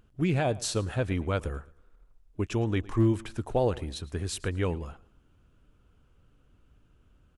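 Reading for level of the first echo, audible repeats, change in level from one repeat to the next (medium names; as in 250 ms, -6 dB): -21.0 dB, 2, -9.0 dB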